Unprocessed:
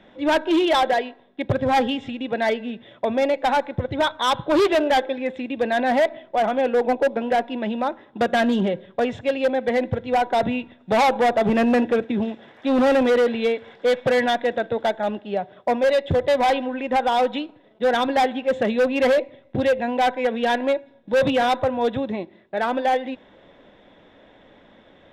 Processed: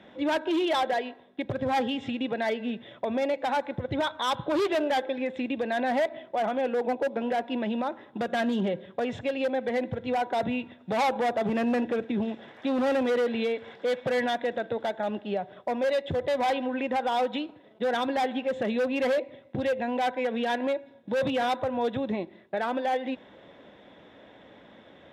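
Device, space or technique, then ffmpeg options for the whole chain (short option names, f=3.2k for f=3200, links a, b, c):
podcast mastering chain: -af "highpass=71,acompressor=threshold=-24dB:ratio=2.5,alimiter=limit=-19.5dB:level=0:latency=1:release=125" -ar 32000 -c:a libmp3lame -b:a 112k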